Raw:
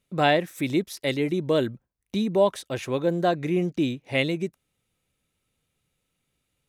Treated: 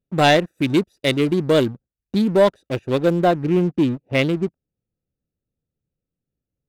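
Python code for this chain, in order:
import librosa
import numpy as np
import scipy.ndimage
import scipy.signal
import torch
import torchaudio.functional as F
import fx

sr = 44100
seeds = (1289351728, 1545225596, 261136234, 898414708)

y = fx.wiener(x, sr, points=41)
y = fx.high_shelf(y, sr, hz=3200.0, db=fx.steps((0.0, 8.0), (3.23, -5.0)))
y = fx.leveller(y, sr, passes=2)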